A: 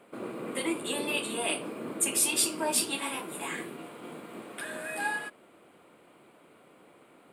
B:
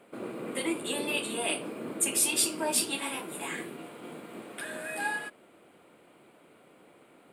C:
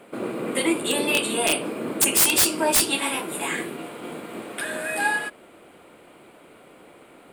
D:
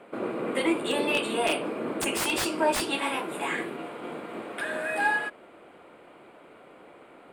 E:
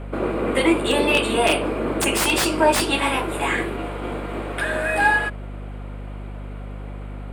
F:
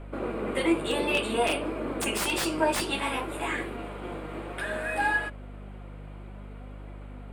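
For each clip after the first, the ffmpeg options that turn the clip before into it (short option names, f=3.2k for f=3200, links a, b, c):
-af "equalizer=f=1.1k:t=o:w=0.45:g=-3"
-af "asubboost=boost=3:cutoff=71,aeval=exprs='(mod(8.91*val(0)+1,2)-1)/8.91':c=same,volume=9dB"
-filter_complex "[0:a]asplit=2[a][b];[b]highpass=f=720:p=1,volume=6dB,asoftclip=type=tanh:threshold=-10dB[c];[a][c]amix=inputs=2:normalize=0,lowpass=f=1.3k:p=1,volume=-6dB"
-af "aeval=exprs='val(0)+0.0112*(sin(2*PI*50*n/s)+sin(2*PI*2*50*n/s)/2+sin(2*PI*3*50*n/s)/3+sin(2*PI*4*50*n/s)/4+sin(2*PI*5*50*n/s)/5)':c=same,volume=7.5dB"
-af "flanger=delay=2.9:depth=3.6:regen=70:speed=0.58:shape=triangular,volume=-4dB"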